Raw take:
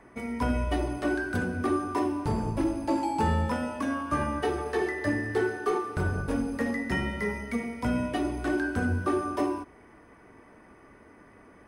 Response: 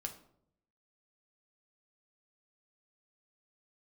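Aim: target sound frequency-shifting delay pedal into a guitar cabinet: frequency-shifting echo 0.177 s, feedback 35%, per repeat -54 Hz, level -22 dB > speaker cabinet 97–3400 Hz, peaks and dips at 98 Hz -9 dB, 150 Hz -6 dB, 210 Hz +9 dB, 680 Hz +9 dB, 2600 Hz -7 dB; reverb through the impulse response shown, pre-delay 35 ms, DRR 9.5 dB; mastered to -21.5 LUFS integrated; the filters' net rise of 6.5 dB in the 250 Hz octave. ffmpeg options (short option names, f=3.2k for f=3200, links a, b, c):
-filter_complex "[0:a]equalizer=f=250:t=o:g=4.5,asplit=2[a][b];[1:a]atrim=start_sample=2205,adelay=35[c];[b][c]afir=irnorm=-1:irlink=0,volume=-8dB[d];[a][d]amix=inputs=2:normalize=0,asplit=3[e][f][g];[f]adelay=177,afreqshift=-54,volume=-22dB[h];[g]adelay=354,afreqshift=-108,volume=-31.1dB[i];[e][h][i]amix=inputs=3:normalize=0,highpass=97,equalizer=f=98:t=q:w=4:g=-9,equalizer=f=150:t=q:w=4:g=-6,equalizer=f=210:t=q:w=4:g=9,equalizer=f=680:t=q:w=4:g=9,equalizer=f=2.6k:t=q:w=4:g=-7,lowpass=f=3.4k:w=0.5412,lowpass=f=3.4k:w=1.3066,volume=3.5dB"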